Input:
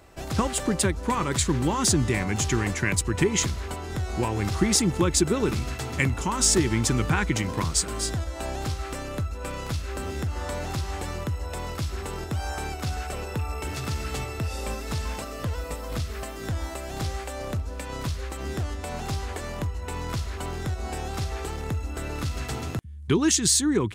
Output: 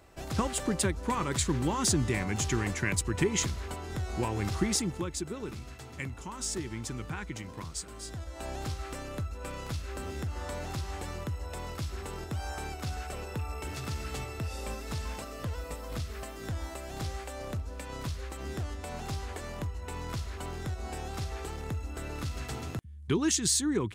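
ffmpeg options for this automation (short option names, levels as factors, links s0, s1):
-af "volume=1.41,afade=t=out:st=4.52:d=0.6:silence=0.354813,afade=t=in:st=8.04:d=0.5:silence=0.398107"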